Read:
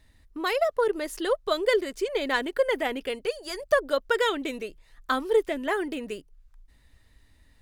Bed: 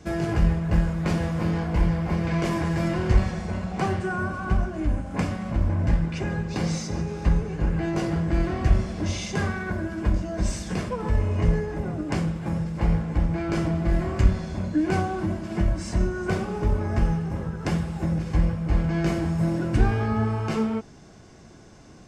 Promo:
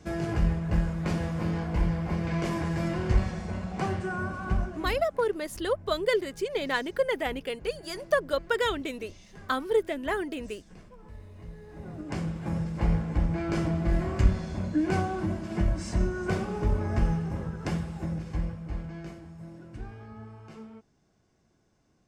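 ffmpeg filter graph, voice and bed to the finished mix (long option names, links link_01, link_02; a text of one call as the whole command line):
ffmpeg -i stem1.wav -i stem2.wav -filter_complex "[0:a]adelay=4400,volume=-2.5dB[link_01];[1:a]volume=15.5dB,afade=type=out:start_time=4.6:duration=0.59:silence=0.11885,afade=type=in:start_time=11.57:duration=1:silence=0.1,afade=type=out:start_time=17.23:duration=1.98:silence=0.133352[link_02];[link_01][link_02]amix=inputs=2:normalize=0" out.wav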